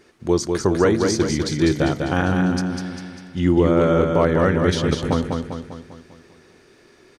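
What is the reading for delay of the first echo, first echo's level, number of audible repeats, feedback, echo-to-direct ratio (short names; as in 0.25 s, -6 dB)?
0.199 s, -4.5 dB, 6, 52%, -3.0 dB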